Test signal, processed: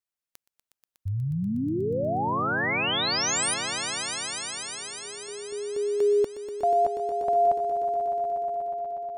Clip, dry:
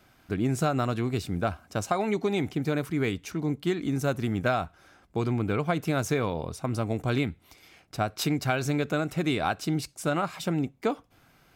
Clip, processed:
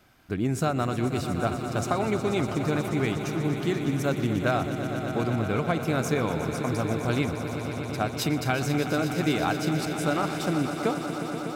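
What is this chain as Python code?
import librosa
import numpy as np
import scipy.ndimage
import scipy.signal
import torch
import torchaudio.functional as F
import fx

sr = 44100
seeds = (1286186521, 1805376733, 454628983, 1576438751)

y = fx.echo_swell(x, sr, ms=121, loudest=5, wet_db=-12.0)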